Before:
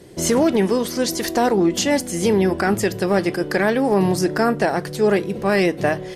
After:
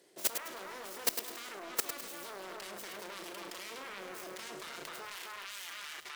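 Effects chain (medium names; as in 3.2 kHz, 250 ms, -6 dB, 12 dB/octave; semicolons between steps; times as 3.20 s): self-modulated delay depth 0.87 ms; treble shelf 2.2 kHz +5 dB; tape echo 258 ms, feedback 23%, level -3.5 dB, low-pass 2 kHz; dynamic bell 810 Hz, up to -7 dB, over -35 dBFS, Q 3.6; high-pass 440 Hz 12 dB/octave, from 5.05 s 1.4 kHz; peak limiter -10 dBFS, peak gain reduction 8.5 dB; flutter echo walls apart 6 m, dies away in 0.22 s; level held to a coarse grid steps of 20 dB; bit-crushed delay 104 ms, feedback 35%, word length 7-bit, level -7 dB; trim -5.5 dB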